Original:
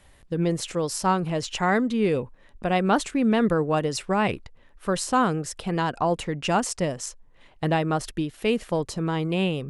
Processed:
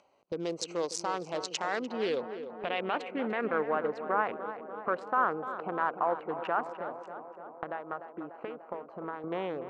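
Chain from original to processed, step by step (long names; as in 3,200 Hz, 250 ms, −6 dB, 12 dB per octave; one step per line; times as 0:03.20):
adaptive Wiener filter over 25 samples
high-pass filter 530 Hz 12 dB per octave
noise gate −56 dBFS, range −46 dB
0:06.67–0:09.24: downward compressor 2.5 to 1, threshold −47 dBFS, peak gain reduction 17 dB
brickwall limiter −21.5 dBFS, peak gain reduction 11.5 dB
upward compression, threshold −34 dBFS
low-pass filter sweep 6,100 Hz → 1,400 Hz, 0:01.59–0:03.93
tape delay 296 ms, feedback 81%, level −9 dB, low-pass 1,600 Hz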